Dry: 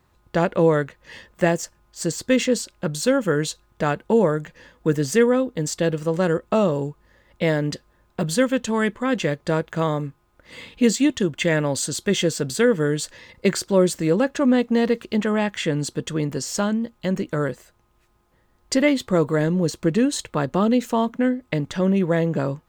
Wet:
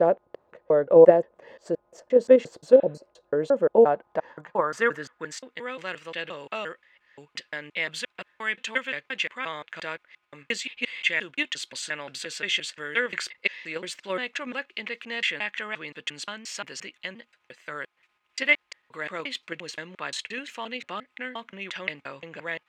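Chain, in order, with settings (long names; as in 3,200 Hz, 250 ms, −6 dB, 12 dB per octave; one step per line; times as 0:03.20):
slices reordered back to front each 175 ms, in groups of 3
healed spectral selection 0:02.76–0:03.05, 930–4,000 Hz both
in parallel at +1.5 dB: output level in coarse steps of 16 dB
on the sum: band-pass filter sweep 570 Hz → 2,400 Hz, 0:03.71–0:05.64
level +2 dB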